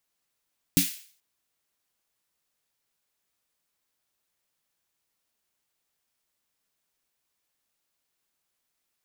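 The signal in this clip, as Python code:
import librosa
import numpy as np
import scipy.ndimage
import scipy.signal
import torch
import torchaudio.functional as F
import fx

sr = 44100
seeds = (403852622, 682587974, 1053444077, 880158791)

y = fx.drum_snare(sr, seeds[0], length_s=0.43, hz=180.0, second_hz=280.0, noise_db=-3.0, noise_from_hz=2100.0, decay_s=0.16, noise_decay_s=0.48)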